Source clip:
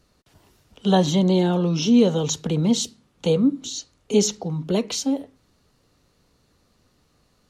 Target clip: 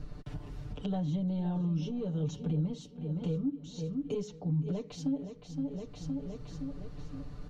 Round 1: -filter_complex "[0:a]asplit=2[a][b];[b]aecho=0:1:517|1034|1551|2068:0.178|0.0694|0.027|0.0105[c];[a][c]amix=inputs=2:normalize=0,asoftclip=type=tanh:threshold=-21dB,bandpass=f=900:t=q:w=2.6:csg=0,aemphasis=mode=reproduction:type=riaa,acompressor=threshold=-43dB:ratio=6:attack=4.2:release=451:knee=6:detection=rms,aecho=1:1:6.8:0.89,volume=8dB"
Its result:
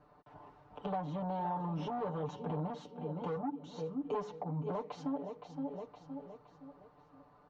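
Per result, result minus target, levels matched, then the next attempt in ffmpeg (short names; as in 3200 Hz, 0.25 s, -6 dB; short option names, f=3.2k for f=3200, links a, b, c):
1000 Hz band +15.5 dB; soft clip: distortion +13 dB
-filter_complex "[0:a]asplit=2[a][b];[b]aecho=0:1:517|1034|1551|2068:0.178|0.0694|0.027|0.0105[c];[a][c]amix=inputs=2:normalize=0,asoftclip=type=tanh:threshold=-21dB,aemphasis=mode=reproduction:type=riaa,acompressor=threshold=-43dB:ratio=6:attack=4.2:release=451:knee=6:detection=rms,aecho=1:1:6.8:0.89,volume=8dB"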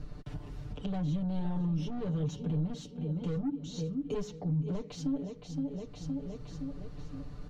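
soft clip: distortion +13 dB
-filter_complex "[0:a]asplit=2[a][b];[b]aecho=0:1:517|1034|1551|2068:0.178|0.0694|0.027|0.0105[c];[a][c]amix=inputs=2:normalize=0,asoftclip=type=tanh:threshold=-9dB,aemphasis=mode=reproduction:type=riaa,acompressor=threshold=-43dB:ratio=6:attack=4.2:release=451:knee=6:detection=rms,aecho=1:1:6.8:0.89,volume=8dB"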